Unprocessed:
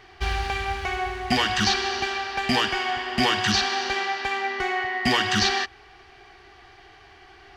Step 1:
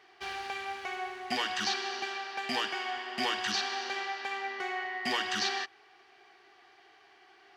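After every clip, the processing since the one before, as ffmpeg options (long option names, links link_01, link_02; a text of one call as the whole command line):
ffmpeg -i in.wav -af "highpass=300,volume=-9dB" out.wav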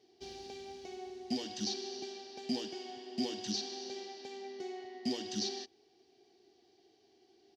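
ffmpeg -i in.wav -af "firequalizer=gain_entry='entry(150,0);entry(220,6);entry(1200,-28);entry(3900,-6);entry(5700,-1);entry(8800,-12)':delay=0.05:min_phase=1" out.wav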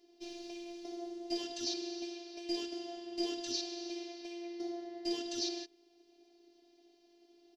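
ffmpeg -i in.wav -af "afftfilt=real='hypot(re,im)*cos(PI*b)':imag='0':win_size=512:overlap=0.75,volume=3.5dB" out.wav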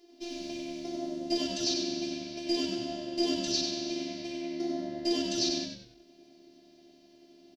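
ffmpeg -i in.wav -filter_complex "[0:a]asplit=5[link_01][link_02][link_03][link_04][link_05];[link_02]adelay=95,afreqshift=-75,volume=-6dB[link_06];[link_03]adelay=190,afreqshift=-150,volume=-15.1dB[link_07];[link_04]adelay=285,afreqshift=-225,volume=-24.2dB[link_08];[link_05]adelay=380,afreqshift=-300,volume=-33.4dB[link_09];[link_01][link_06][link_07][link_08][link_09]amix=inputs=5:normalize=0,volume=6.5dB" out.wav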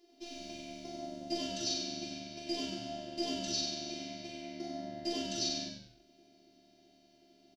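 ffmpeg -i in.wav -filter_complex "[0:a]asplit=2[link_01][link_02];[link_02]adelay=42,volume=-4dB[link_03];[link_01][link_03]amix=inputs=2:normalize=0,volume=-5.5dB" out.wav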